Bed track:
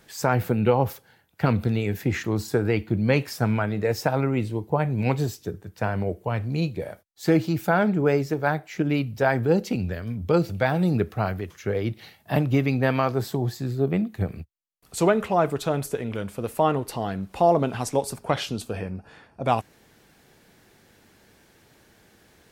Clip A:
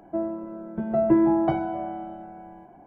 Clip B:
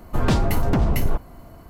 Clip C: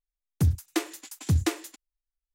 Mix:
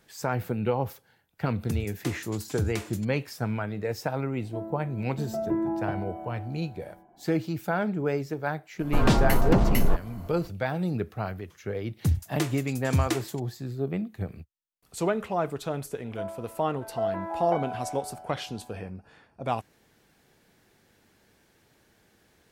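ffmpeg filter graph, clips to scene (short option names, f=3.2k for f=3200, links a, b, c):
-filter_complex "[3:a]asplit=2[a][b];[1:a]asplit=2[c][d];[0:a]volume=-6.5dB[e];[a]alimiter=limit=-20.5dB:level=0:latency=1:release=117[f];[2:a]equalizer=f=74:t=o:w=0.6:g=-13.5[g];[d]highpass=f=590:w=0.5412,highpass=f=590:w=1.3066[h];[f]atrim=end=2.34,asetpts=PTS-STARTPTS,volume=-1.5dB,afade=t=in:d=0.004:c=hsin,afade=t=out:st=2.336:d=0.004:c=hsin,adelay=1290[i];[c]atrim=end=2.86,asetpts=PTS-STARTPTS,volume=-8.5dB,afade=t=in:d=0.004:c=hsin,afade=t=out:st=2.856:d=0.004:c=hsin,adelay=4400[j];[g]atrim=end=1.69,asetpts=PTS-STARTPTS,afade=t=in:d=0.004:c=hsin,afade=t=out:st=1.686:d=0.004:c=hsin,adelay=8790[k];[b]atrim=end=2.34,asetpts=PTS-STARTPTS,volume=-1.5dB,afade=t=in:d=0.004:c=hsin,afade=t=out:st=2.336:d=0.004:c=hsin,adelay=11640[l];[h]atrim=end=2.86,asetpts=PTS-STARTPTS,volume=-3dB,afade=t=in:d=0.004:c=hsin,afade=t=out:st=2.856:d=0.004:c=hsin,adelay=707364S[m];[e][i][j][k][l][m]amix=inputs=6:normalize=0"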